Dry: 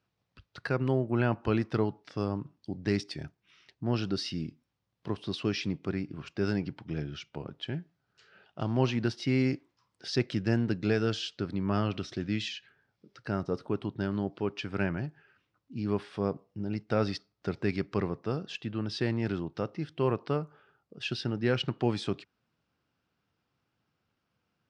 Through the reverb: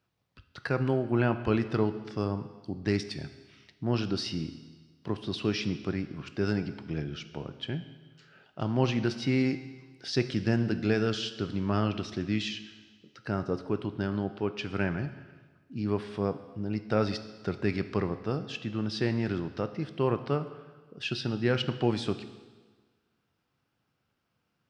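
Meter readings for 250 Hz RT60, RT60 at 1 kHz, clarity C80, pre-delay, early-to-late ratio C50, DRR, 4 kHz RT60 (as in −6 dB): 1.4 s, 1.4 s, 14.0 dB, 14 ms, 12.0 dB, 10.0 dB, 1.4 s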